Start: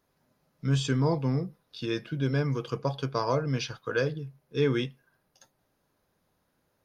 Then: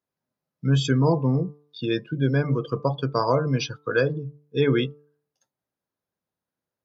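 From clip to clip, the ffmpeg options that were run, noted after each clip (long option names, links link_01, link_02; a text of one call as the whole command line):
ffmpeg -i in.wav -af "afftdn=noise_reduction=21:noise_floor=-38,highpass=77,bandreject=frequency=147:width_type=h:width=4,bandreject=frequency=294:width_type=h:width=4,bandreject=frequency=441:width_type=h:width=4,bandreject=frequency=588:width_type=h:width=4,bandreject=frequency=735:width_type=h:width=4,bandreject=frequency=882:width_type=h:width=4,bandreject=frequency=1029:width_type=h:width=4,bandreject=frequency=1176:width_type=h:width=4,bandreject=frequency=1323:width_type=h:width=4,volume=6dB" out.wav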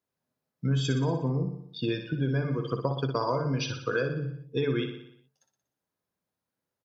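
ffmpeg -i in.wav -filter_complex "[0:a]acompressor=threshold=-25dB:ratio=6,asplit=2[link_01][link_02];[link_02]aecho=0:1:60|120|180|240|300|360|420:0.398|0.227|0.129|0.0737|0.042|0.024|0.0137[link_03];[link_01][link_03]amix=inputs=2:normalize=0" out.wav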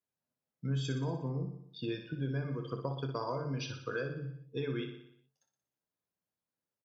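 ffmpeg -i in.wav -filter_complex "[0:a]asplit=2[link_01][link_02];[link_02]adelay=29,volume=-12dB[link_03];[link_01][link_03]amix=inputs=2:normalize=0,volume=-8.5dB" out.wav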